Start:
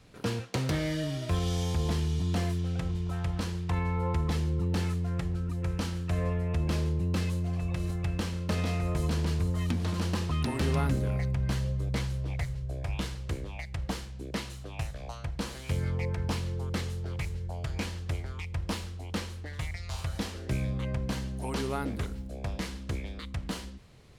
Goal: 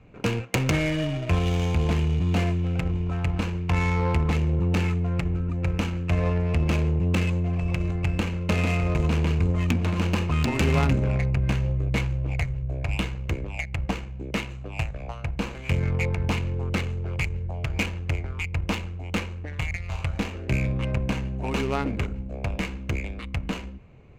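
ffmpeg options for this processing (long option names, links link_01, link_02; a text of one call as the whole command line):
ffmpeg -i in.wav -af "superequalizer=12b=2.82:15b=3.16,aeval=exprs='0.188*(cos(1*acos(clip(val(0)/0.188,-1,1)))-cos(1*PI/2))+0.0133*(cos(3*acos(clip(val(0)/0.188,-1,1)))-cos(3*PI/2))+0.075*(cos(4*acos(clip(val(0)/0.188,-1,1)))-cos(4*PI/2))+0.0944*(cos(6*acos(clip(val(0)/0.188,-1,1)))-cos(6*PI/2))+0.0422*(cos(8*acos(clip(val(0)/0.188,-1,1)))-cos(8*PI/2))':channel_layout=same,adynamicsmooth=sensitivity=5:basefreq=1400,volume=7.5dB" out.wav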